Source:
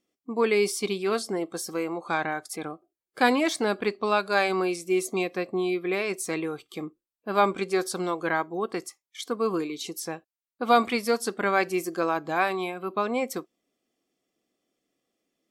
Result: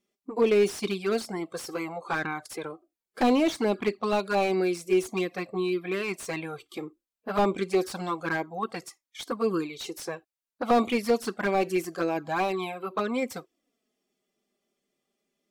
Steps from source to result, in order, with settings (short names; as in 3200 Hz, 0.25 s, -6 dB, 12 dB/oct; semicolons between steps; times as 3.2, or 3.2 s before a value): envelope flanger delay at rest 5 ms, full sweep at -20 dBFS; slew limiter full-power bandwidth 68 Hz; gain +2.5 dB